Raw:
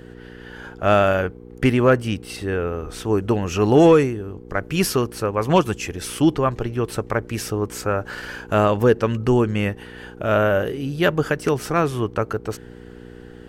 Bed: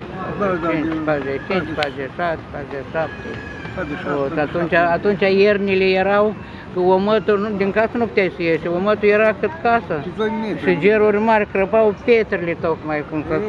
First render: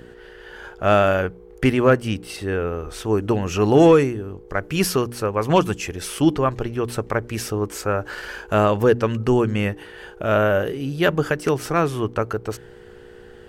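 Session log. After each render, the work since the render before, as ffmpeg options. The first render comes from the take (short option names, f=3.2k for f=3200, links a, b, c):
-af "bandreject=f=60:t=h:w=4,bandreject=f=120:t=h:w=4,bandreject=f=180:t=h:w=4,bandreject=f=240:t=h:w=4,bandreject=f=300:t=h:w=4"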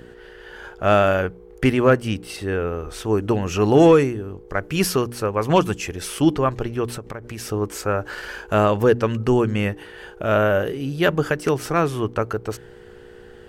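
-filter_complex "[0:a]asettb=1/sr,asplit=3[a][b][c];[a]atrim=end=6.964[d];[b]atrim=start=6.96:end=7.52,asetpts=PTS-STARTPTS,afade=t=in:d=0.004:c=qsin,afade=t=out:st=0.556:d=0.004:c=qsin,acompressor=threshold=-28dB:ratio=6:attack=3.2:release=140:knee=1:detection=peak[e];[c]atrim=start=7.516[f];[d][e]acrossfade=d=0.004:c1=hsin:c2=qsin[g];[g][f]acrossfade=d=0.004:c1=qsin:c2=hsin"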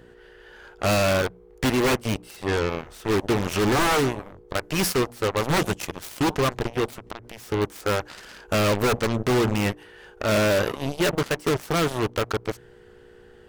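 -af "aeval=exprs='0.2*(abs(mod(val(0)/0.2+3,4)-2)-1)':c=same,aeval=exprs='0.211*(cos(1*acos(clip(val(0)/0.211,-1,1)))-cos(1*PI/2))+0.0237*(cos(3*acos(clip(val(0)/0.211,-1,1)))-cos(3*PI/2))+0.0335*(cos(5*acos(clip(val(0)/0.211,-1,1)))-cos(5*PI/2))+0.0596*(cos(7*acos(clip(val(0)/0.211,-1,1)))-cos(7*PI/2))':c=same"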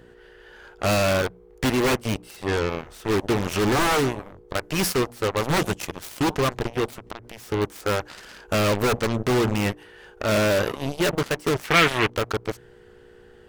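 -filter_complex "[0:a]asettb=1/sr,asplit=3[a][b][c];[a]atrim=end=11.644[d];[b]atrim=start=11.64:end=12.1,asetpts=PTS-STARTPTS,afade=t=in:d=0.004:c=qsin,afade=t=out:st=0.456:d=0.004:c=qsin,equalizer=f=2.2k:t=o:w=1.6:g=14[e];[c]atrim=start=12.096[f];[d][e]acrossfade=d=0.004:c1=hsin:c2=qsin[g];[g][f]acrossfade=d=0.004:c1=qsin:c2=hsin"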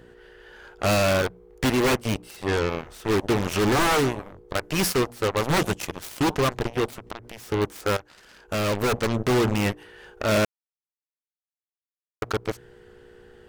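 -filter_complex "[0:a]asplit=4[a][b][c][d];[a]atrim=end=7.97,asetpts=PTS-STARTPTS,afade=t=out:st=7.966:d=0.004:c=hsin:silence=0.188365[e];[b]atrim=start=7.97:end=10.45,asetpts=PTS-STARTPTS,afade=t=in:d=1.17:silence=0.188365,afade=t=out:st=2.476:d=0.004:c=hsin[f];[c]atrim=start=10.45:end=12.22,asetpts=PTS-STARTPTS,volume=0[g];[d]atrim=start=12.22,asetpts=PTS-STARTPTS,afade=t=in:d=0.004:c=hsin[h];[e][f][g][h]concat=n=4:v=0:a=1"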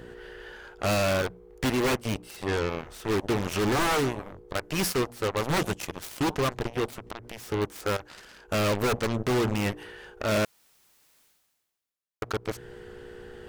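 -af "alimiter=limit=-19.5dB:level=0:latency=1:release=204,areverse,acompressor=mode=upward:threshold=-36dB:ratio=2.5,areverse"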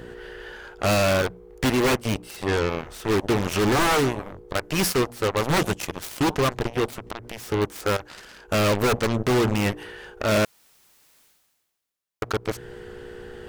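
-af "volume=4.5dB"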